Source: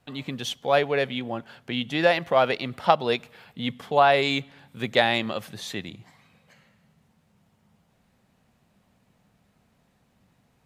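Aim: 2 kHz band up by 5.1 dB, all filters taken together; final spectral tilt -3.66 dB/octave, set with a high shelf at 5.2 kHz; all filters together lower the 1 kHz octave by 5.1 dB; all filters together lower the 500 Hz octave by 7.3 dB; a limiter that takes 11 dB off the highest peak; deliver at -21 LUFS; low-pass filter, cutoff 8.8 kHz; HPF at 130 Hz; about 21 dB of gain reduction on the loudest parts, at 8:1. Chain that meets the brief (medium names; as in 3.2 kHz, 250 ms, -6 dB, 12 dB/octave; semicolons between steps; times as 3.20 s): high-pass 130 Hz; low-pass 8.8 kHz; peaking EQ 500 Hz -8 dB; peaking EQ 1 kHz -5.5 dB; peaking EQ 2 kHz +8.5 dB; treble shelf 5.2 kHz -3.5 dB; compression 8:1, threshold -38 dBFS; trim +24 dB; peak limiter -8 dBFS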